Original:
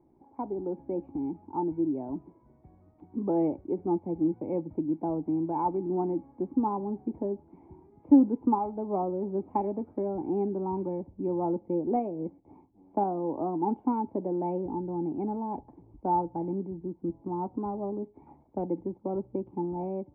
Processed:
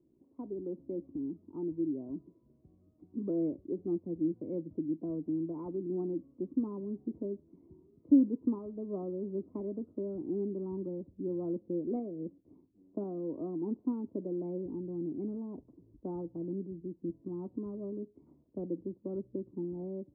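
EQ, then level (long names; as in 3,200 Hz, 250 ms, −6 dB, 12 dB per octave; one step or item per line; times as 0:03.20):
moving average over 53 samples
low-shelf EQ 110 Hz −10 dB
−1.5 dB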